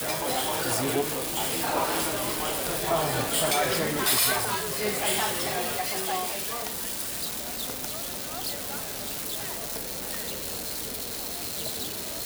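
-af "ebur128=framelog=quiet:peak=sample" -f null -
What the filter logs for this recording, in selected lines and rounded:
Integrated loudness:
  I:         -27.1 LUFS
  Threshold: -37.1 LUFS
Loudness range:
  LRA:         6.4 LU
  Threshold: -46.9 LUFS
  LRA low:   -30.8 LUFS
  LRA high:  -24.4 LUFS
Sample peak:
  Peak:      -12.9 dBFS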